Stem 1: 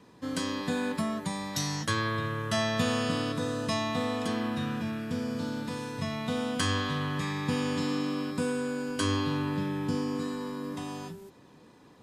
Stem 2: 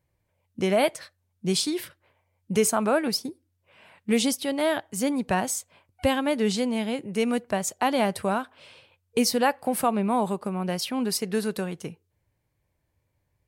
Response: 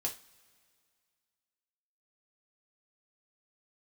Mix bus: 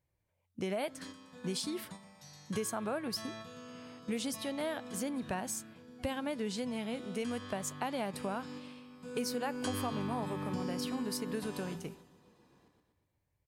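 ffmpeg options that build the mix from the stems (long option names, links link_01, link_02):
-filter_complex "[0:a]adelay=650,volume=-6dB,afade=type=in:start_time=8.87:duration=0.66:silence=0.237137,asplit=3[link_01][link_02][link_03];[link_02]volume=-7dB[link_04];[link_03]volume=-9.5dB[link_05];[1:a]volume=-7.5dB,asplit=2[link_06][link_07];[link_07]apad=whole_len=559166[link_08];[link_01][link_08]sidechaingate=range=-33dB:threshold=-55dB:ratio=16:detection=peak[link_09];[2:a]atrim=start_sample=2205[link_10];[link_04][link_10]afir=irnorm=-1:irlink=0[link_11];[link_05]aecho=0:1:121|242|363|484|605|726|847|968:1|0.52|0.27|0.141|0.0731|0.038|0.0198|0.0103[link_12];[link_09][link_06][link_11][link_12]amix=inputs=4:normalize=0,acompressor=threshold=-34dB:ratio=3"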